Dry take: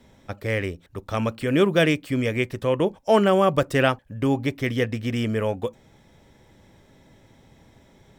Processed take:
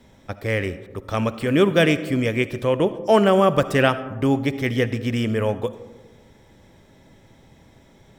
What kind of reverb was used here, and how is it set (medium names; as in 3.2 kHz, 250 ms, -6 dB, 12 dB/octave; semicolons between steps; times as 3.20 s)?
algorithmic reverb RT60 1.4 s, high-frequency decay 0.3×, pre-delay 30 ms, DRR 13.5 dB; trim +2 dB